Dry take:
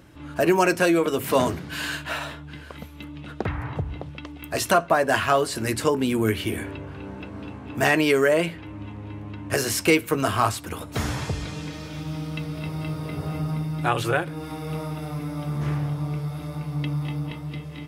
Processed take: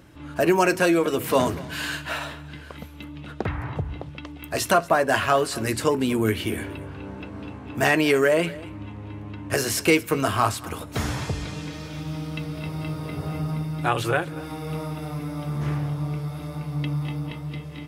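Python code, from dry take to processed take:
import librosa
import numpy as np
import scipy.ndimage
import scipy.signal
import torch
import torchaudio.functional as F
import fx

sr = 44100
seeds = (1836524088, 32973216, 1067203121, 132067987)

y = x + 10.0 ** (-20.0 / 20.0) * np.pad(x, (int(234 * sr / 1000.0), 0))[:len(x)]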